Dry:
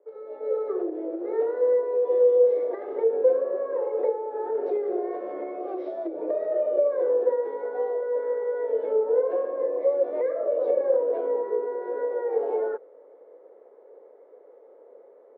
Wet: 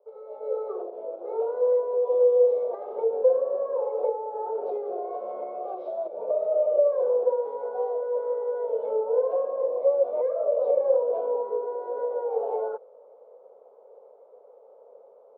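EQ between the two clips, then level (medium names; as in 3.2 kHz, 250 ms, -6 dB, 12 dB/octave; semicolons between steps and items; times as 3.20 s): distance through air 180 m; static phaser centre 770 Hz, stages 4; +3.5 dB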